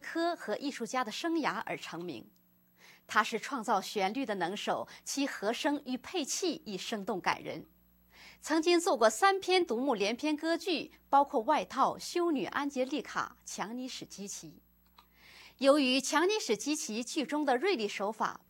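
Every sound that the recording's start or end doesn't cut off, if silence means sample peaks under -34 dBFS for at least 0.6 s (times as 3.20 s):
3.11–7.58 s
8.46–14.37 s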